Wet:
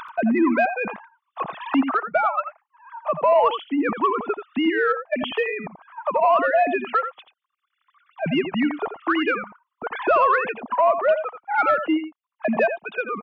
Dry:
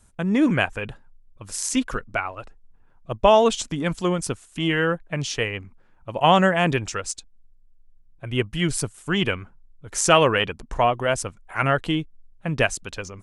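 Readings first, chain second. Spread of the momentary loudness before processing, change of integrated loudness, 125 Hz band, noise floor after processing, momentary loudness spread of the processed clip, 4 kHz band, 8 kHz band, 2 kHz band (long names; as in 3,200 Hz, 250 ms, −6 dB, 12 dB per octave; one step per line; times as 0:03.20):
17 LU, +0.5 dB, −14.0 dB, −81 dBFS, 13 LU, −8.0 dB, below −40 dB, +0.5 dB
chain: three sine waves on the formant tracks
flat-topped bell 900 Hz +11 dB 1.2 octaves
upward compression, threshold −15 dBFS
dynamic equaliser 470 Hz, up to −4 dB, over −20 dBFS, Q 0.75
brickwall limiter −9.5 dBFS, peak gain reduction 11 dB
on a send: single-tap delay 85 ms −10 dB
on the sum: soft clipping −6.5 dBFS, distortion −27 dB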